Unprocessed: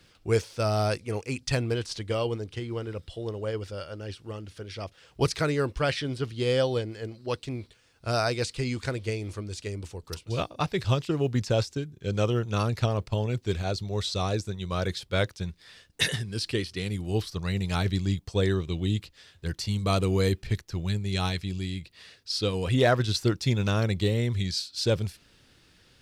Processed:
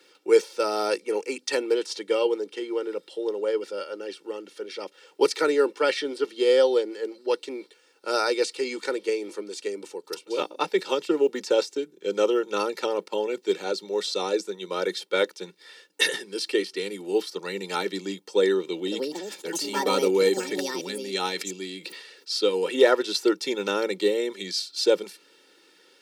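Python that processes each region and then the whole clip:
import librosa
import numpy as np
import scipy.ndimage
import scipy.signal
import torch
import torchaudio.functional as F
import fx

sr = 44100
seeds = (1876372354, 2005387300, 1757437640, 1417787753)

y = fx.chain(x, sr, fx.echo_pitch(ms=247, semitones=6, count=2, db_per_echo=-6.0),
    fx.sustainer(db_per_s=63.0), at=(18.62, 22.35))
y = scipy.signal.sosfilt(scipy.signal.butter(12, 200.0, 'highpass', fs=sr, output='sos'), y)
y = fx.low_shelf(y, sr, hz=470.0, db=4.5)
y = y + 0.9 * np.pad(y, (int(2.2 * sr / 1000.0), 0))[:len(y)]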